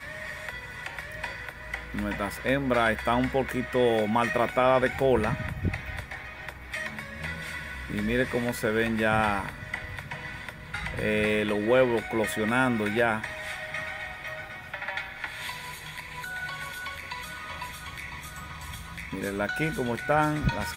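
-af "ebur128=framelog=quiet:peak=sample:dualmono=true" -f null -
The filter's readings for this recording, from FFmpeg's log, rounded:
Integrated loudness:
  I:         -25.7 LUFS
  Threshold: -35.9 LUFS
Loudness range:
  LRA:        10.0 LU
  Threshold: -45.7 LUFS
  LRA low:   -32.4 LUFS
  LRA high:  -22.4 LUFS
Sample peak:
  Peak:       -9.8 dBFS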